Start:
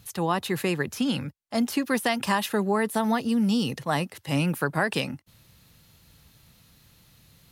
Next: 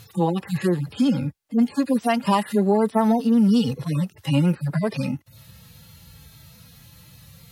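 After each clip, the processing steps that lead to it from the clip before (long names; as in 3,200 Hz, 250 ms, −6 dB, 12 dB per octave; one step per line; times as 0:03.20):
harmonic-percussive split with one part muted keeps harmonic
in parallel at +1.5 dB: downward compressor, threshold −34 dBFS, peak gain reduction 13 dB
on the sum: level +4 dB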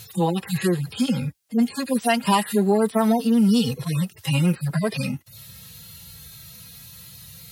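high-shelf EQ 2,500 Hz +11.5 dB
notch comb filter 290 Hz
dynamic equaliser 5,700 Hz, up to −4 dB, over −50 dBFS, Q 2.2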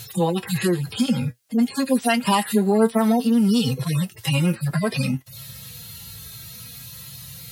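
flanger 0.56 Hz, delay 7.3 ms, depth 1.9 ms, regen +59%
in parallel at −1 dB: downward compressor, threshold −31 dBFS, peak gain reduction 14 dB
on the sum: level +3 dB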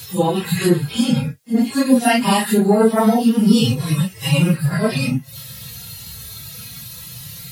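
random phases in long frames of 100 ms
level +4.5 dB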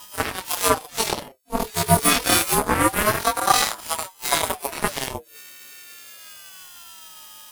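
every partial snapped to a pitch grid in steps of 3 semitones
harmonic generator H 5 −38 dB, 6 −16 dB, 7 −15 dB, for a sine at −0.5 dBFS
ring modulator whose carrier an LFO sweeps 710 Hz, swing 40%, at 0.27 Hz
level −1.5 dB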